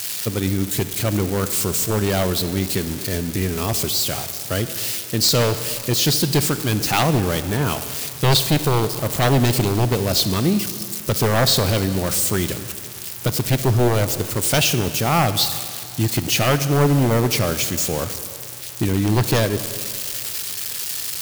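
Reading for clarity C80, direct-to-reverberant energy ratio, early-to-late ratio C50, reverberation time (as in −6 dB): 12.0 dB, 11.0 dB, 11.5 dB, 2.3 s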